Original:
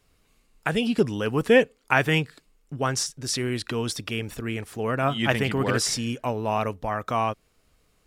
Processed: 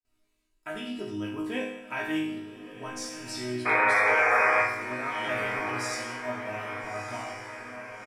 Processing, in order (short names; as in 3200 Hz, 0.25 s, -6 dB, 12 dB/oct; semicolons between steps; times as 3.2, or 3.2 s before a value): gate with hold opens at -55 dBFS; comb 3.1 ms, depth 82%; painted sound noise, 3.65–4.62, 400–2500 Hz -10 dBFS; resonator bank G#2 minor, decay 0.84 s; diffused feedback echo 1.307 s, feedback 50%, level -10 dB; gain +6 dB